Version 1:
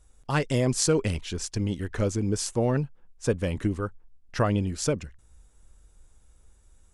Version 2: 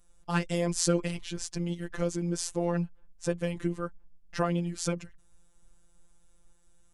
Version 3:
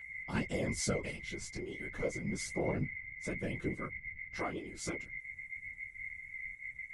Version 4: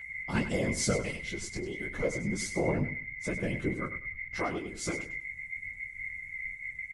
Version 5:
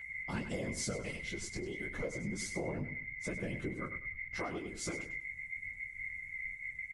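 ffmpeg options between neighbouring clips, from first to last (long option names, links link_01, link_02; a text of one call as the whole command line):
ffmpeg -i in.wav -af "afftfilt=real='hypot(re,im)*cos(PI*b)':imag='0':win_size=1024:overlap=0.75" out.wav
ffmpeg -i in.wav -af "aeval=exprs='val(0)+0.0178*sin(2*PI*2100*n/s)':channel_layout=same,flanger=delay=16.5:depth=3.8:speed=0.32,afftfilt=real='hypot(re,im)*cos(2*PI*random(0))':imag='hypot(re,im)*sin(2*PI*random(1))':win_size=512:overlap=0.75,volume=1dB" out.wav
ffmpeg -i in.wav -af "aecho=1:1:99|198|297:0.266|0.0665|0.0166,volume=5dB" out.wav
ffmpeg -i in.wav -af "acompressor=threshold=-32dB:ratio=4,volume=-3dB" out.wav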